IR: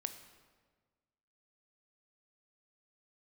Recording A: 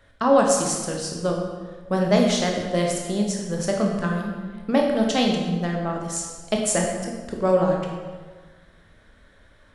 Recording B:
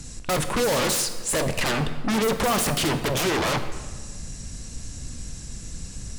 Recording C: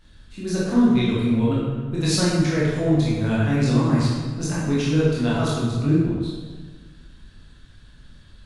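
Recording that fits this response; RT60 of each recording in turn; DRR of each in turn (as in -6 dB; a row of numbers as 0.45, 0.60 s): B; 1.5, 1.5, 1.5 s; 0.0, 8.5, -8.0 dB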